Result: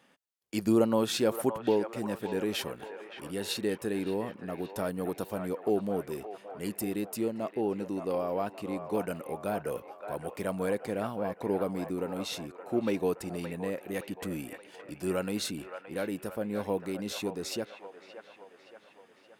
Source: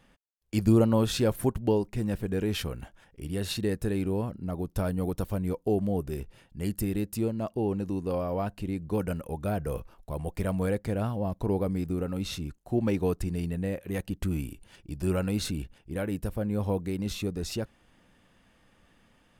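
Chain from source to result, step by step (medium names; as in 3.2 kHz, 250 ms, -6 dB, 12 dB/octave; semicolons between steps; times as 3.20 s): high-pass 250 Hz 12 dB/octave; feedback echo behind a band-pass 571 ms, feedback 54%, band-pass 1.2 kHz, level -6 dB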